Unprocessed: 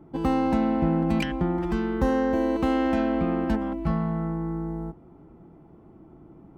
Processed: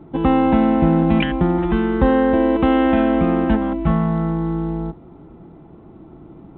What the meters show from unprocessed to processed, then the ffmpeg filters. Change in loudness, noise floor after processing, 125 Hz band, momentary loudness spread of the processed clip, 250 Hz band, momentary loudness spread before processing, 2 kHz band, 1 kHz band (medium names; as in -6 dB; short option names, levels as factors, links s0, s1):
+8.0 dB, -43 dBFS, +8.0 dB, 7 LU, +8.0 dB, 7 LU, +8.0 dB, +8.0 dB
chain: -af "volume=2.51" -ar 8000 -c:a pcm_mulaw